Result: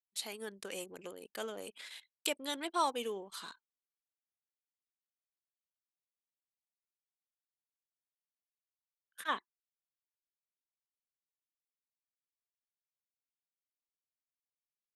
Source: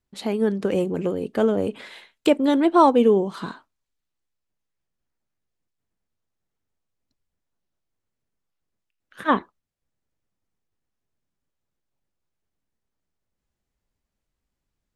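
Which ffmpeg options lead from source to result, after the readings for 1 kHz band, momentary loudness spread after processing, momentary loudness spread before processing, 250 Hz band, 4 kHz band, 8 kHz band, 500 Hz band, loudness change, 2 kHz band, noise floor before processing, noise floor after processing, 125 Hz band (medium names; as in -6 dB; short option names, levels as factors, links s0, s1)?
-15.0 dB, 16 LU, 14 LU, -26.0 dB, -4.5 dB, no reading, -21.0 dB, -18.5 dB, -10.0 dB, -83 dBFS, under -85 dBFS, under -25 dB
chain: -af "aderivative,anlmdn=0.00158,volume=1.26"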